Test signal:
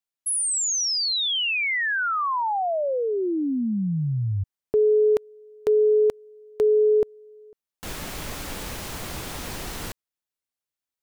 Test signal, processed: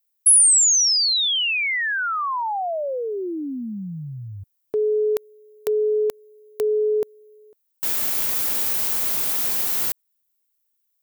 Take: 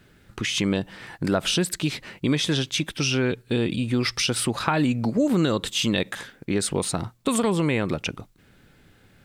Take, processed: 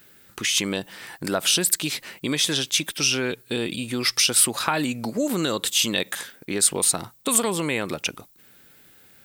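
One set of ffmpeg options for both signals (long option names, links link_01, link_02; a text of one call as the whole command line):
ffmpeg -i in.wav -af "aemphasis=mode=production:type=bsi" out.wav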